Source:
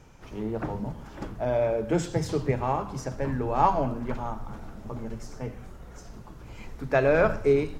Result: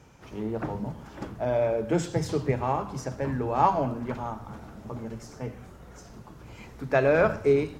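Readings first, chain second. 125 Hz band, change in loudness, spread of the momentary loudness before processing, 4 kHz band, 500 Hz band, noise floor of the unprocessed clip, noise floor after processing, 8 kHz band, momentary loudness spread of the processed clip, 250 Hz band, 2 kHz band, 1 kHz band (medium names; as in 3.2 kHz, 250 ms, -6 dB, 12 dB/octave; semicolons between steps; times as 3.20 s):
-0.5 dB, 0.0 dB, 23 LU, 0.0 dB, 0.0 dB, -46 dBFS, -48 dBFS, 0.0 dB, 20 LU, 0.0 dB, 0.0 dB, 0.0 dB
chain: high-pass 63 Hz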